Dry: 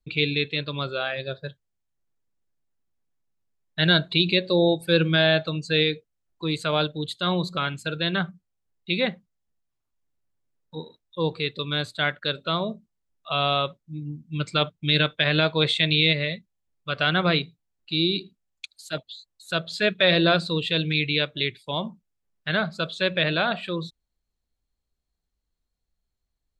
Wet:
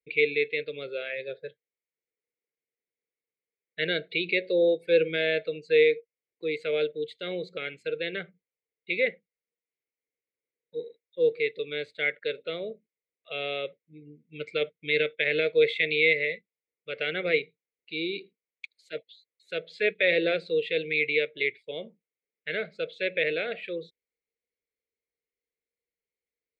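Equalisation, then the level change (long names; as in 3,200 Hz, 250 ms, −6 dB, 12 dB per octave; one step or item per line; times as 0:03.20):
pair of resonant band-passes 1,000 Hz, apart 2.2 octaves
notch filter 790 Hz, Q 20
+6.0 dB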